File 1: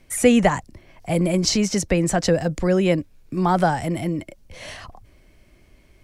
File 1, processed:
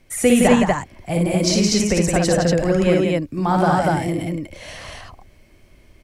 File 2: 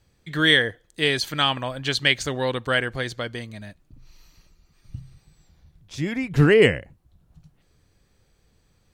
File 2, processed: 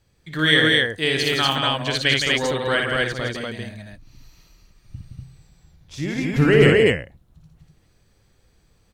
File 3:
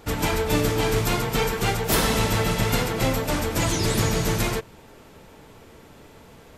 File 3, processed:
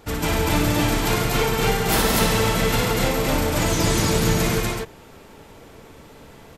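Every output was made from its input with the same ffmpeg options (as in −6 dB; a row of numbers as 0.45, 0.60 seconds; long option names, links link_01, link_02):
-af "aecho=1:1:58.31|166.2|242:0.631|0.562|0.891,volume=-1dB"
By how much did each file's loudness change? +2.5, +2.5, +2.5 LU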